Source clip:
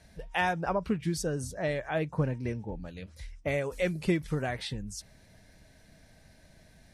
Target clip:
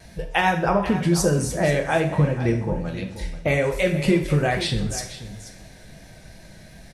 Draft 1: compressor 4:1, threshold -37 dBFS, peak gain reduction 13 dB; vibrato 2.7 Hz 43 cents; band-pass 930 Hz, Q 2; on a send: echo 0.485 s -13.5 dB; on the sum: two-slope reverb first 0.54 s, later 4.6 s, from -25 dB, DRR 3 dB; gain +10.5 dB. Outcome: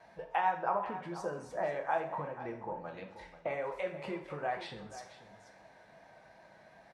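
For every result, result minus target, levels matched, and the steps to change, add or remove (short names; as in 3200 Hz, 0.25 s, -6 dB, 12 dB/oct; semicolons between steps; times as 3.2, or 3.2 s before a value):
1000 Hz band +7.5 dB; compressor: peak gain reduction +7 dB
remove: band-pass 930 Hz, Q 2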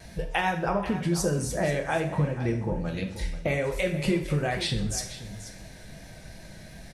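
compressor: peak gain reduction +7 dB
change: compressor 4:1, threshold -28 dBFS, peak gain reduction 6.5 dB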